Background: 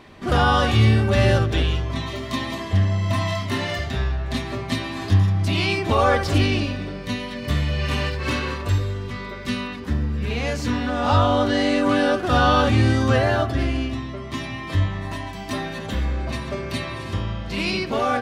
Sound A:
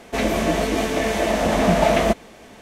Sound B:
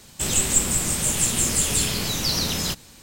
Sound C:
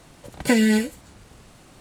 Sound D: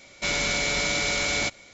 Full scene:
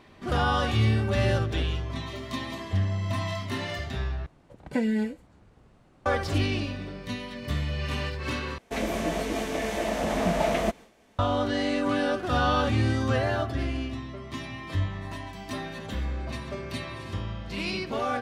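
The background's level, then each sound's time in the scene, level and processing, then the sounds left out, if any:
background -7 dB
4.26 replace with C -7.5 dB + LPF 1200 Hz 6 dB/oct
8.58 replace with A -8 dB + gate with hold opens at -31 dBFS, closes at -38 dBFS, hold 76 ms, range -8 dB
not used: B, D

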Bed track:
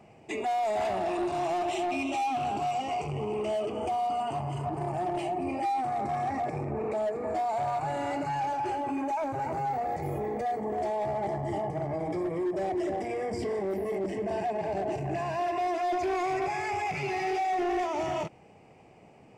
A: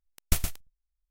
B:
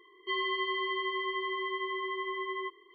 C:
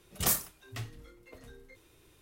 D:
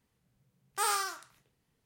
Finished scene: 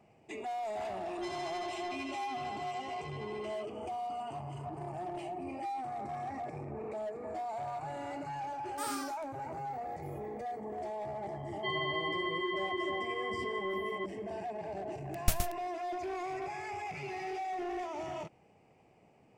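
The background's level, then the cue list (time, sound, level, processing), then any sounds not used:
bed track -9 dB
0.94 add B -12 dB + self-modulated delay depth 0.15 ms
8 add D -9 dB
11.36 add B -3 dB
14.96 add A -4 dB
not used: C

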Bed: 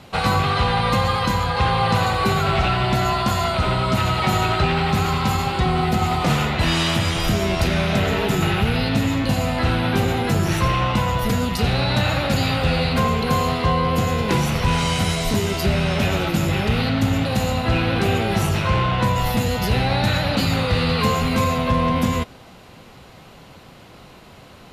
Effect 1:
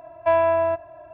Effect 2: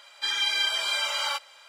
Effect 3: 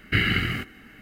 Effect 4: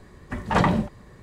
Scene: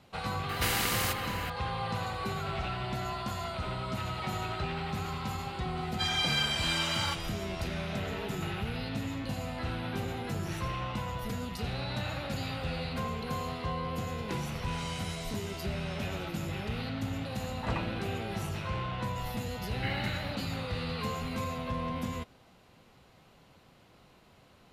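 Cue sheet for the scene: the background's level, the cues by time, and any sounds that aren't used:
bed -15.5 dB
0.49 add 3 -8 dB + spectral compressor 4:1
5.77 add 2 -4.5 dB
17.12 add 4 -16.5 dB
19.7 add 3 -14.5 dB
not used: 1

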